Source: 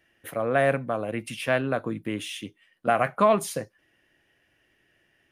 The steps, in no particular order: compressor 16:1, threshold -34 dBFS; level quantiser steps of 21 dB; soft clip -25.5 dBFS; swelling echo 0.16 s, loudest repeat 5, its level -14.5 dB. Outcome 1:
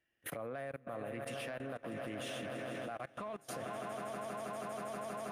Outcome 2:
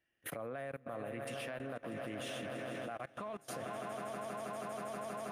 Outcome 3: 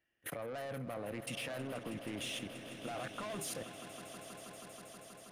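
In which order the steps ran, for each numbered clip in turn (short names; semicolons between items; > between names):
swelling echo > compressor > soft clip > level quantiser; swelling echo > compressor > level quantiser > soft clip; soft clip > compressor > level quantiser > swelling echo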